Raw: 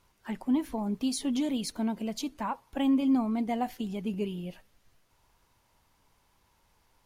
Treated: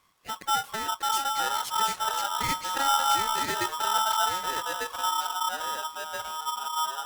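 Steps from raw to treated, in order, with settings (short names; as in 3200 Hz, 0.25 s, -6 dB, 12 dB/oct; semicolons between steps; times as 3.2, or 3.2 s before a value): 3.65–4.19 low shelf 330 Hz +6.5 dB; echoes that change speed 0.515 s, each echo -3 st, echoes 3; polarity switched at an audio rate 1100 Hz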